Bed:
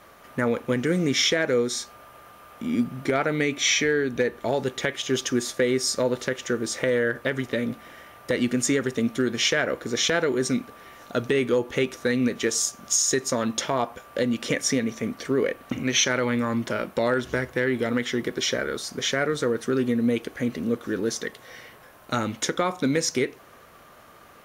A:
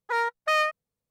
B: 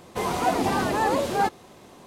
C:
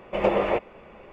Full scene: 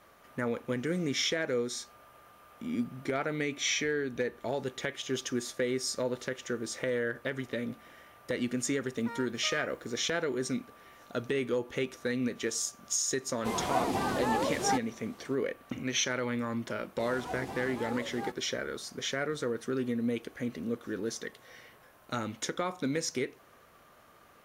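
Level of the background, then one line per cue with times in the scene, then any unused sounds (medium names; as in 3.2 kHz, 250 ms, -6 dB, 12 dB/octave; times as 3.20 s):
bed -8.5 dB
8.96 s: add A -17.5 dB + jump at every zero crossing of -42 dBFS
13.29 s: add B -7 dB
16.83 s: add B -17 dB
not used: C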